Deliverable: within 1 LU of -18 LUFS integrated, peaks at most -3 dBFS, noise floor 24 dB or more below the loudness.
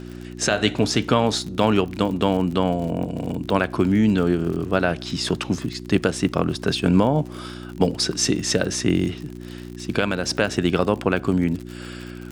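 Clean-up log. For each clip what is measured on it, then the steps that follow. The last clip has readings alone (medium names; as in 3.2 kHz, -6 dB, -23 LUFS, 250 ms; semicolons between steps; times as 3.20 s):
tick rate 54 per s; hum 60 Hz; highest harmonic 360 Hz; hum level -34 dBFS; loudness -22.0 LUFS; peak level -4.0 dBFS; loudness target -18.0 LUFS
-> de-click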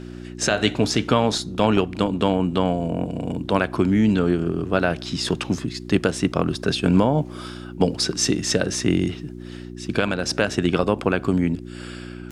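tick rate 0.32 per s; hum 60 Hz; highest harmonic 360 Hz; hum level -34 dBFS
-> de-hum 60 Hz, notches 6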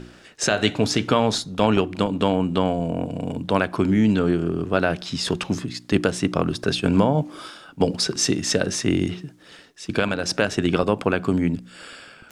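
hum not found; loudness -22.5 LUFS; peak level -3.5 dBFS; loudness target -18.0 LUFS
-> trim +4.5 dB; peak limiter -3 dBFS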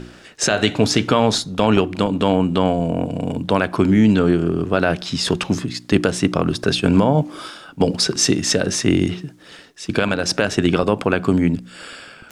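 loudness -18.5 LUFS; peak level -3.0 dBFS; noise floor -44 dBFS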